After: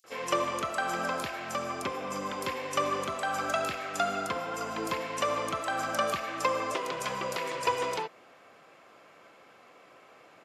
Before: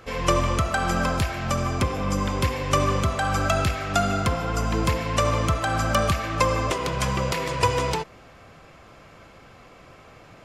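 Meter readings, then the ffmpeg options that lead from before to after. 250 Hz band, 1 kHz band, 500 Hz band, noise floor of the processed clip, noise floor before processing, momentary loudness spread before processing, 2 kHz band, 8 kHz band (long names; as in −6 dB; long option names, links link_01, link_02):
−11.5 dB, −5.5 dB, −6.0 dB, −57 dBFS, −49 dBFS, 3 LU, −5.5 dB, −7.5 dB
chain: -filter_complex "[0:a]highpass=320,aresample=32000,aresample=44100,acrossover=split=5300[link_01][link_02];[link_01]adelay=40[link_03];[link_03][link_02]amix=inputs=2:normalize=0,volume=-5.5dB"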